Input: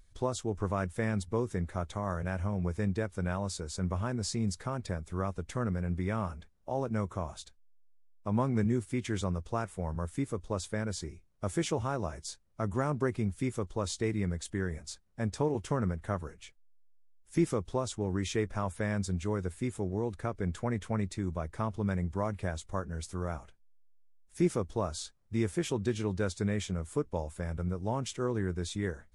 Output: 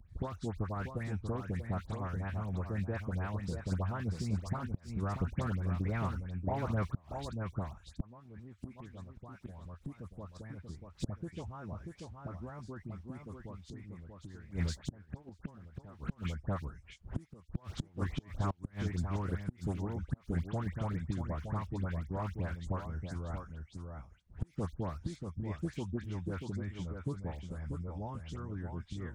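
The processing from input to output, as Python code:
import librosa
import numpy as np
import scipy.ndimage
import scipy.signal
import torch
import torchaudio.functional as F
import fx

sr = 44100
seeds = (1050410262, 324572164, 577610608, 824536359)

p1 = fx.recorder_agc(x, sr, target_db=-26.0, rise_db_per_s=15.0, max_gain_db=30)
p2 = fx.doppler_pass(p1, sr, speed_mps=11, closest_m=12.0, pass_at_s=11.55)
p3 = fx.peak_eq(p2, sr, hz=410.0, db=-7.5, octaves=1.0)
p4 = fx.hpss(p3, sr, part='harmonic', gain_db=-13)
p5 = p4 + 10.0 ** (-7.0 / 20.0) * np.pad(p4, (int(636 * sr / 1000.0), 0))[:len(p4)]
p6 = fx.quant_dither(p5, sr, seeds[0], bits=8, dither='none')
p7 = p5 + (p6 * librosa.db_to_amplitude(-8.0))
p8 = scipy.signal.sosfilt(scipy.signal.butter(2, 54.0, 'highpass', fs=sr, output='sos'), p7)
p9 = fx.riaa(p8, sr, side='playback')
p10 = fx.dispersion(p9, sr, late='highs', ms=99.0, hz=1900.0)
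p11 = fx.gate_flip(p10, sr, shuts_db=-35.0, range_db=-31)
p12 = fx.band_squash(p11, sr, depth_pct=40)
y = p12 * librosa.db_to_amplitude(14.5)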